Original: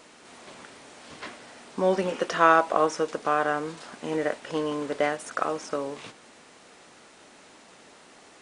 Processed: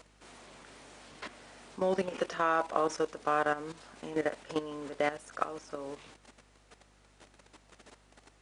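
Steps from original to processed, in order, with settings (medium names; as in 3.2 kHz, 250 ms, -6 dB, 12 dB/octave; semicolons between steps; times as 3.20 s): level held to a coarse grid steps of 13 dB; hum 50 Hz, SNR 30 dB; trim -1.5 dB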